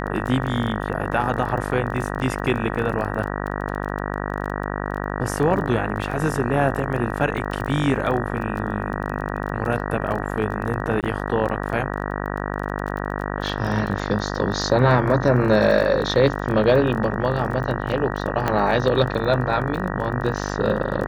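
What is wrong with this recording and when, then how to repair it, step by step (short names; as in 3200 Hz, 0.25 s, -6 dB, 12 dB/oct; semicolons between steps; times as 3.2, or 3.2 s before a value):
buzz 50 Hz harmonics 38 -27 dBFS
crackle 21/s -28 dBFS
11.01–11.03 gap 18 ms
18.48 pop -8 dBFS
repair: de-click; de-hum 50 Hz, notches 38; interpolate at 11.01, 18 ms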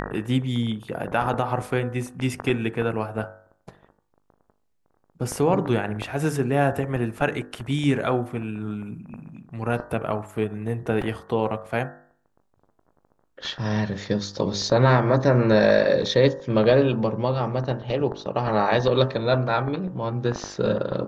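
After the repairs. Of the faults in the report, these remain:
none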